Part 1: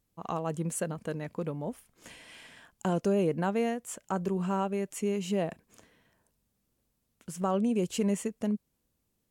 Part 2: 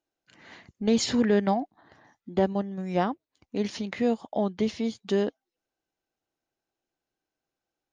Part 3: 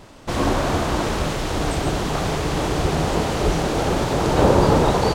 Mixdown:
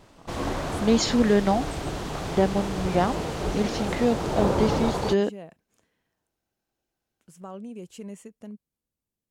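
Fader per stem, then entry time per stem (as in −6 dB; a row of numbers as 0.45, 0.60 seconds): −11.0, +2.5, −9.0 decibels; 0.00, 0.00, 0.00 seconds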